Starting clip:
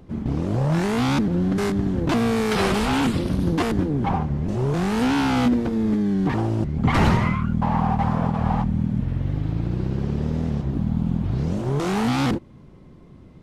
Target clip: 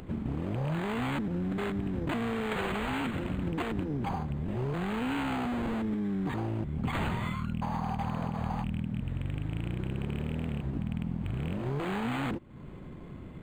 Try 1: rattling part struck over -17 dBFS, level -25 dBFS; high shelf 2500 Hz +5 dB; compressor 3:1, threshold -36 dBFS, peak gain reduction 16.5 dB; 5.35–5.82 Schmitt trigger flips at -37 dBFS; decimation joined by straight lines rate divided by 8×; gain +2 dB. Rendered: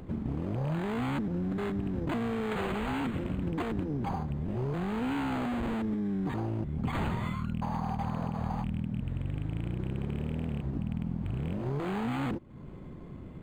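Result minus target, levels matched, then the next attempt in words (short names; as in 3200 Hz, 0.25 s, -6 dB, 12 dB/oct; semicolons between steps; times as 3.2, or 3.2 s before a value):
4000 Hz band -3.5 dB
rattling part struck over -17 dBFS, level -25 dBFS; high shelf 2500 Hz +13.5 dB; compressor 3:1, threshold -36 dBFS, peak gain reduction 17 dB; 5.35–5.82 Schmitt trigger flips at -37 dBFS; decimation joined by straight lines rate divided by 8×; gain +2 dB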